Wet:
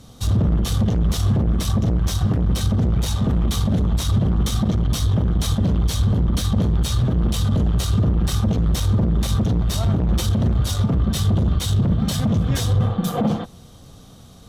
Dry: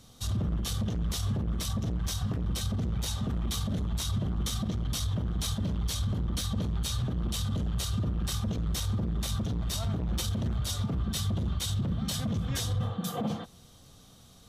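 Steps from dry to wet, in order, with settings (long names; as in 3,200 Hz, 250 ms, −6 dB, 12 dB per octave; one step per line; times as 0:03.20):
harmonic generator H 8 −25 dB, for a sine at −20 dBFS
tilt shelving filter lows +3.5 dB, about 1,300 Hz
level +8.5 dB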